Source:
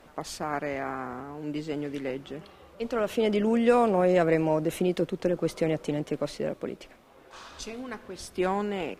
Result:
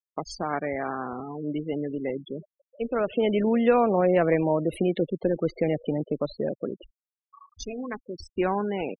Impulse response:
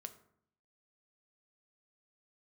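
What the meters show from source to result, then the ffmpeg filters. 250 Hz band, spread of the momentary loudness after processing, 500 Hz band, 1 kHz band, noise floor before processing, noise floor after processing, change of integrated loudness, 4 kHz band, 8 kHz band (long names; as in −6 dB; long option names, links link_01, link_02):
+1.5 dB, 15 LU, +1.5 dB, +1.5 dB, −54 dBFS, below −85 dBFS, +1.5 dB, −2.0 dB, can't be measured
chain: -filter_complex "[0:a]afftfilt=real='re*gte(hypot(re,im),0.0251)':imag='im*gte(hypot(re,im),0.0251)':win_size=1024:overlap=0.75,asplit=2[link_01][link_02];[link_02]acompressor=threshold=-35dB:ratio=6,volume=-2dB[link_03];[link_01][link_03]amix=inputs=2:normalize=0"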